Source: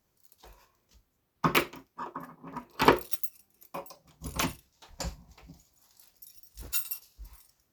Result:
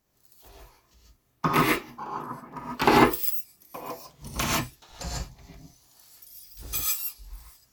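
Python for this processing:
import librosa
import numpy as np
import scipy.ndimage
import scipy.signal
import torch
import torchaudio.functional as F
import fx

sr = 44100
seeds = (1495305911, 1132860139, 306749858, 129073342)

y = fx.pitch_trill(x, sr, semitones=-2.0, every_ms=114)
y = fx.rev_gated(y, sr, seeds[0], gate_ms=170, shape='rising', drr_db=-5.0)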